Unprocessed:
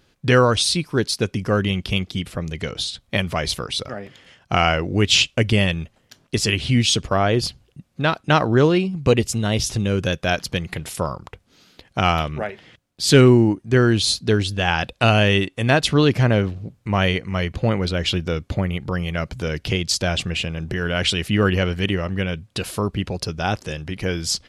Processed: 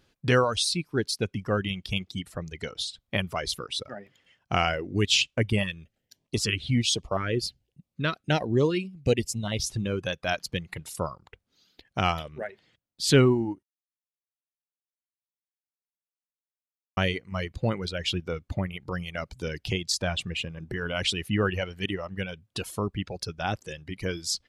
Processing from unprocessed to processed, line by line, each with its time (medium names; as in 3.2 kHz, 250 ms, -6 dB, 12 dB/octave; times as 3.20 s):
5.63–9.52 s: LFO notch saw up 1.3 Hz 690–1700 Hz
13.63–16.97 s: mute
whole clip: reverb removal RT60 1.9 s; trim -6 dB